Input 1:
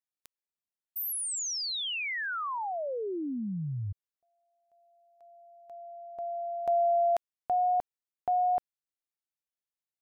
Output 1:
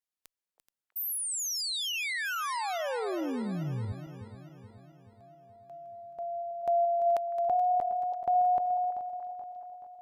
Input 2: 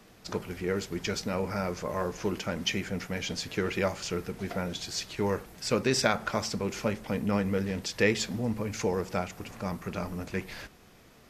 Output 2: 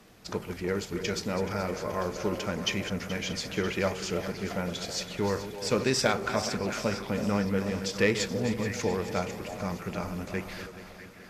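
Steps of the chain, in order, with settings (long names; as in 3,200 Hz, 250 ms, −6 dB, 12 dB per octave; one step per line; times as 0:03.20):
feedback delay that plays each chunk backwards 214 ms, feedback 71%, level −11.5 dB
echo through a band-pass that steps 323 ms, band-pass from 610 Hz, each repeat 1.4 octaves, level −7.5 dB
asymmetric clip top −15 dBFS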